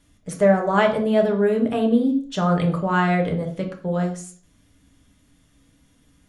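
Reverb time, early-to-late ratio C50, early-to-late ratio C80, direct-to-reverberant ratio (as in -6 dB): 0.45 s, 9.5 dB, 14.0 dB, 1.5 dB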